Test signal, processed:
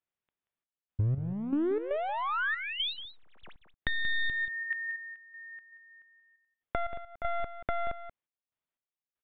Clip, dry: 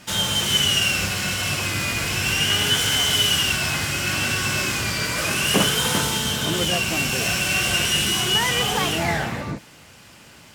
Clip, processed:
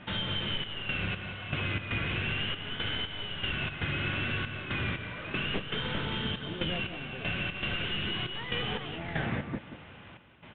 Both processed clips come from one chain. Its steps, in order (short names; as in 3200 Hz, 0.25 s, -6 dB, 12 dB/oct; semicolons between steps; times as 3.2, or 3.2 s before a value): one-sided fold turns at -20.5 dBFS; step gate "xxxxx..xx...xx." 118 bpm -12 dB; compressor, threshold -25 dBFS; on a send: echo 0.182 s -12 dB; on the sum: dynamic EQ 830 Hz, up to -6 dB, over -43 dBFS, Q 1.2; downsampling 8000 Hz; air absorption 210 m